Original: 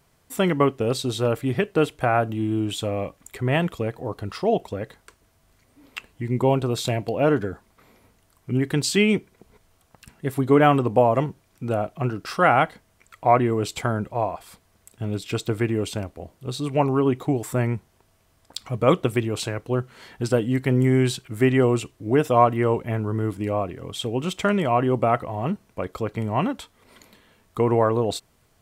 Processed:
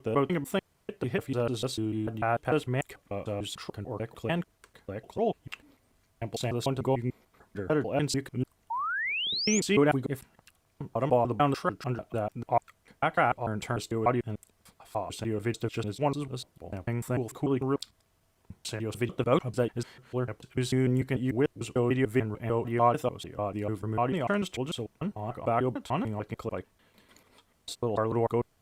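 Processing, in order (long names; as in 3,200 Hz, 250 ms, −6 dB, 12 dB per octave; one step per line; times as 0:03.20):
slices reordered back to front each 148 ms, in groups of 6
sound drawn into the spectrogram rise, 0:08.70–0:09.60, 870–7,200 Hz −24 dBFS
level −7 dB
Opus 64 kbit/s 48,000 Hz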